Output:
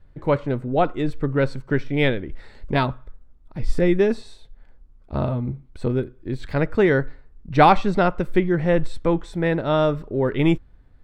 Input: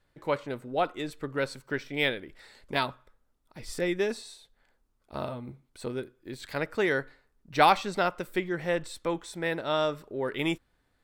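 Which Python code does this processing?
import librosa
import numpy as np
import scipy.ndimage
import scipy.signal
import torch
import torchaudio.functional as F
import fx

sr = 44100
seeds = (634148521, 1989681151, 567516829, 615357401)

y = fx.riaa(x, sr, side='playback')
y = y * librosa.db_to_amplitude(6.0)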